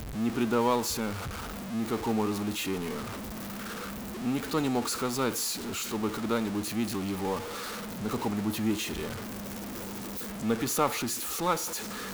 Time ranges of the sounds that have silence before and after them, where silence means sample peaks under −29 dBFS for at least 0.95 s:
0:04.25–0:09.12

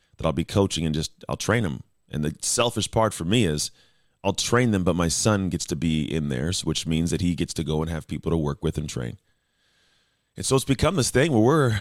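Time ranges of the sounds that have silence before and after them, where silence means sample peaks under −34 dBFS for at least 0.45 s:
0:04.24–0:09.14

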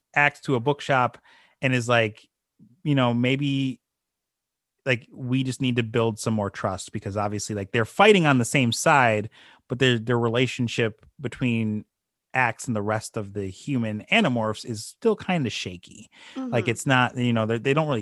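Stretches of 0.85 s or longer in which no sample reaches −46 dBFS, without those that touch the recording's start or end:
0:03.75–0:04.86

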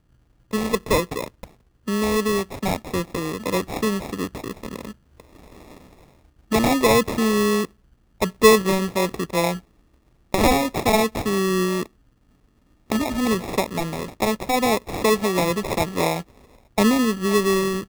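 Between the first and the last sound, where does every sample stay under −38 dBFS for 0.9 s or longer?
0:11.86–0:12.90

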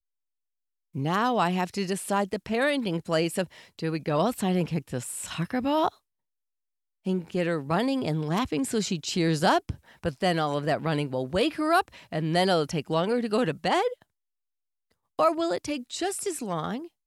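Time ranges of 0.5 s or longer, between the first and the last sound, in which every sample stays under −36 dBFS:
0:05.88–0:07.06
0:13.93–0:15.19

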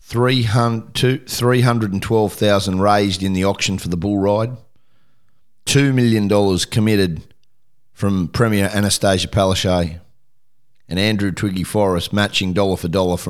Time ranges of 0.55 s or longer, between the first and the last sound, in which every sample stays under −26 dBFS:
0:04.55–0:05.67
0:07.19–0:08.00
0:09.97–0:10.91

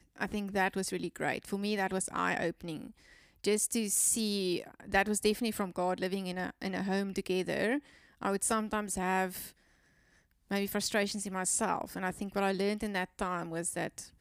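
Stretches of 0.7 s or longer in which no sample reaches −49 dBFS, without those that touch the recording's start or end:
0:09.50–0:10.50

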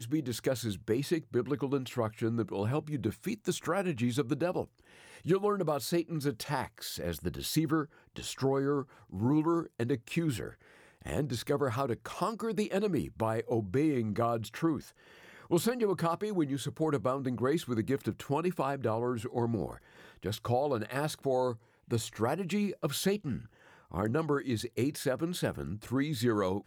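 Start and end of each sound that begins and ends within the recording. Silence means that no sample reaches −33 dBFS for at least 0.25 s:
0:05.27–0:07.83
0:08.16–0:08.82
0:09.14–0:10.49
0:11.07–0:14.80
0:15.51–0:19.73
0:20.25–0:21.52
0:21.92–0:23.37

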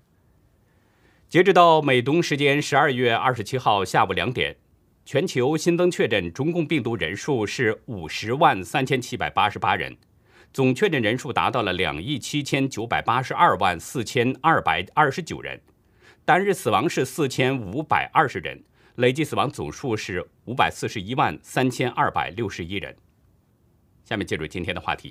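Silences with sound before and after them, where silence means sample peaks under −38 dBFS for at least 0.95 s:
0:22.91–0:24.11

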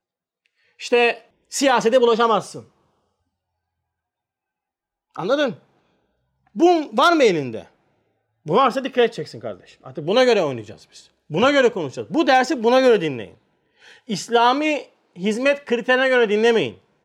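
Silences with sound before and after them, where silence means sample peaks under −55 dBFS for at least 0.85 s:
0:02.86–0:05.15

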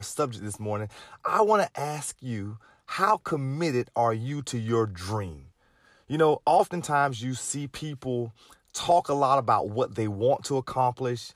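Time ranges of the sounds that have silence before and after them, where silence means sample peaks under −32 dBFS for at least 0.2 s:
0:01.25–0:02.53
0:02.90–0:05.30
0:06.10–0:08.27

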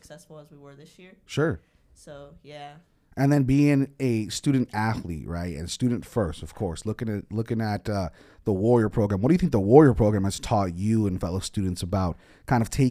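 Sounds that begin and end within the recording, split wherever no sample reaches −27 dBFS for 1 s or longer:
0:01.34–0:01.53

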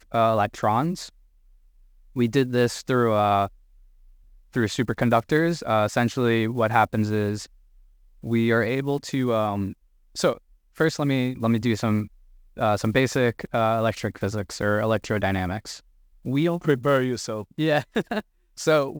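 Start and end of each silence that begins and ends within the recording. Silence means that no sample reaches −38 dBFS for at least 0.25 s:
0:01.09–0:02.16
0:03.47–0:04.54
0:07.46–0:08.23
0:09.73–0:10.15
0:10.37–0:10.78
0:12.07–0:12.57
0:15.78–0:16.25
0:18.21–0:18.58

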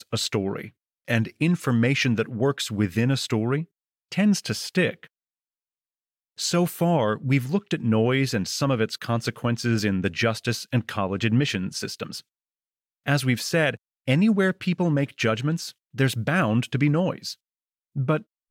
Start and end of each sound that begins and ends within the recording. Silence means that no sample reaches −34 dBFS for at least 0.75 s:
0:06.39–0:12.20

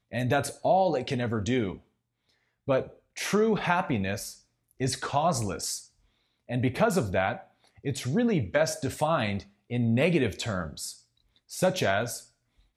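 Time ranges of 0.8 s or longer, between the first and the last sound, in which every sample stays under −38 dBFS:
0:01.76–0:02.68

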